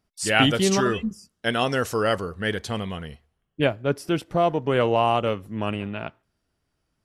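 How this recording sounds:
background noise floor −77 dBFS
spectral slope −4.5 dB per octave

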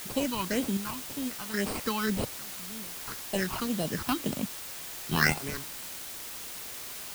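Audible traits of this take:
aliases and images of a low sample rate 3,500 Hz, jitter 0%
sample-and-hold tremolo 1.3 Hz, depth 95%
phaser sweep stages 6, 1.9 Hz, lowest notch 490–1,800 Hz
a quantiser's noise floor 8 bits, dither triangular

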